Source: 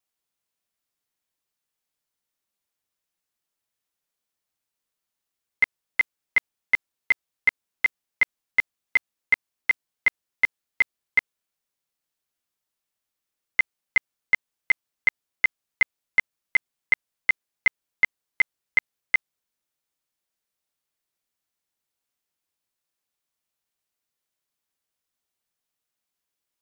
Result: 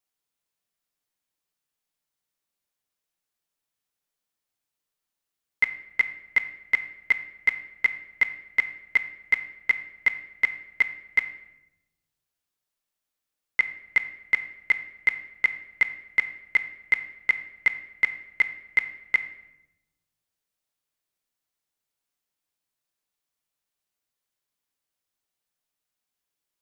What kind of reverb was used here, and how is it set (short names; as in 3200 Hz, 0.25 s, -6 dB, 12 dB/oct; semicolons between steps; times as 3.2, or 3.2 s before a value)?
shoebox room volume 330 m³, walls mixed, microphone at 0.4 m; gain -1.5 dB